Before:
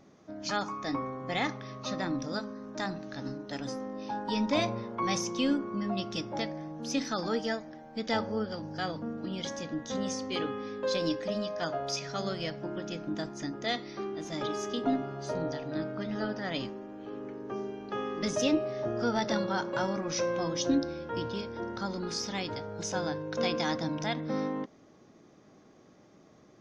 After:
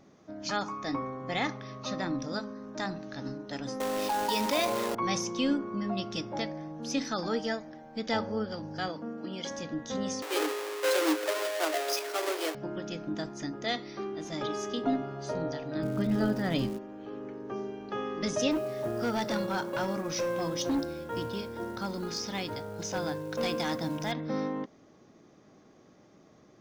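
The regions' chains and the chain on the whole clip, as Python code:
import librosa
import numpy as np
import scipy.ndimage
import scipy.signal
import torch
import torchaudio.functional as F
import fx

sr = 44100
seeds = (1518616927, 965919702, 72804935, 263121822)

y = fx.chain(x, sr, fx.highpass(hz=390.0, slope=12),
    fx.quant_companded(bits=4),
    fx.env_flatten(amount_pct=70), at=(3.8, 4.95))
y = fx.chain(y, sr, fx.highpass(hz=210.0, slope=12),
    fx.notch(hz=3800.0, q=8.8), at=(8.88, 9.51))
y = fx.chain(y, sr, fx.halfwave_hold(),
    fx.cheby1_highpass(hz=290.0, order=10), at=(10.22, 12.55))
y = fx.low_shelf(y, sr, hz=320.0, db=11.5, at=(15.82, 16.77), fade=0.02)
y = fx.dmg_crackle(y, sr, seeds[0], per_s=500.0, level_db=-40.0, at=(15.82, 16.77), fade=0.02)
y = fx.chain(y, sr, fx.lowpass(hz=7500.0, slope=12),
    fx.quant_companded(bits=6),
    fx.overload_stage(gain_db=25.0), at=(18.51, 24.12))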